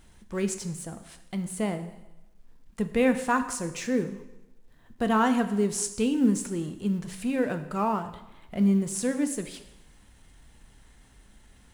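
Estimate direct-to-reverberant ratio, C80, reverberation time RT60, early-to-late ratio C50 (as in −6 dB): 8.0 dB, 13.0 dB, 1.0 s, 11.5 dB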